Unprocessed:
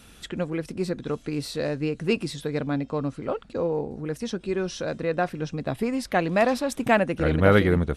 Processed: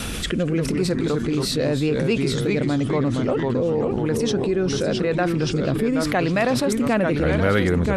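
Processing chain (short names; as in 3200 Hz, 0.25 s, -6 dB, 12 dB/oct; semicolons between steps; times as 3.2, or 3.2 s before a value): rotary speaker horn 0.9 Hz; echoes that change speed 0.138 s, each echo -2 st, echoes 3, each echo -6 dB; fast leveller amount 70%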